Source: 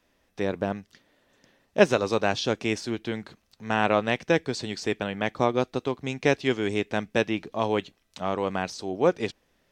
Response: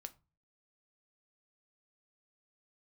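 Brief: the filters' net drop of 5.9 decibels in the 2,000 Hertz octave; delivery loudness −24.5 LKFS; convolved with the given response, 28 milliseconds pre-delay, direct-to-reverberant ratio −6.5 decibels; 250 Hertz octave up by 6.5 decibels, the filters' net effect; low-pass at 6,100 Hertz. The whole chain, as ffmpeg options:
-filter_complex "[0:a]lowpass=6100,equalizer=frequency=250:width_type=o:gain=8.5,equalizer=frequency=2000:width_type=o:gain=-8,asplit=2[link_01][link_02];[1:a]atrim=start_sample=2205,adelay=28[link_03];[link_02][link_03]afir=irnorm=-1:irlink=0,volume=11.5dB[link_04];[link_01][link_04]amix=inputs=2:normalize=0,volume=-7dB"

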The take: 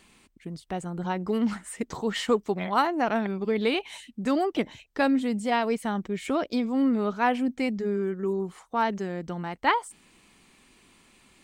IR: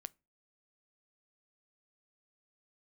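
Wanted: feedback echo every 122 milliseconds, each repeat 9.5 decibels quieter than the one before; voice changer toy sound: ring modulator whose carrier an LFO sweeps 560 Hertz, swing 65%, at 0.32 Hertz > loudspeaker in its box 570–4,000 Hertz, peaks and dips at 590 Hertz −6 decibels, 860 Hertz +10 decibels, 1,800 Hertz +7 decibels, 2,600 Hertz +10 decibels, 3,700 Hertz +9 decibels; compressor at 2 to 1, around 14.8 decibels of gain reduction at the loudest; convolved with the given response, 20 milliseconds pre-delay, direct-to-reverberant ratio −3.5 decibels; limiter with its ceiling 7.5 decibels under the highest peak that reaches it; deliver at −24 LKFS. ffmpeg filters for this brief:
-filter_complex "[0:a]acompressor=threshold=-46dB:ratio=2,alimiter=level_in=7.5dB:limit=-24dB:level=0:latency=1,volume=-7.5dB,aecho=1:1:122|244|366|488:0.335|0.111|0.0365|0.012,asplit=2[link_01][link_02];[1:a]atrim=start_sample=2205,adelay=20[link_03];[link_02][link_03]afir=irnorm=-1:irlink=0,volume=8.5dB[link_04];[link_01][link_04]amix=inputs=2:normalize=0,aeval=exprs='val(0)*sin(2*PI*560*n/s+560*0.65/0.32*sin(2*PI*0.32*n/s))':channel_layout=same,highpass=570,equalizer=frequency=590:width_type=q:width=4:gain=-6,equalizer=frequency=860:width_type=q:width=4:gain=10,equalizer=frequency=1800:width_type=q:width=4:gain=7,equalizer=frequency=2600:width_type=q:width=4:gain=10,equalizer=frequency=3700:width_type=q:width=4:gain=9,lowpass=frequency=4000:width=0.5412,lowpass=frequency=4000:width=1.3066,volume=12.5dB"

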